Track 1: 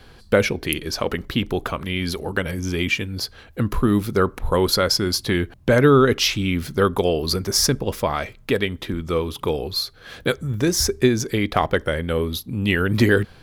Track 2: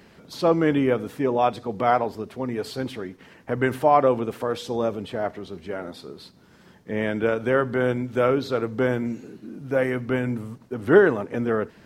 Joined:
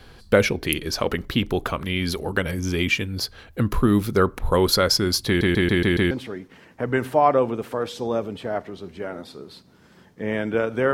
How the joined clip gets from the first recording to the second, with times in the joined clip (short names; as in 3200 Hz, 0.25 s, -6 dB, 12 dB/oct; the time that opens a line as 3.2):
track 1
5.27 stutter in place 0.14 s, 6 plays
6.11 switch to track 2 from 2.8 s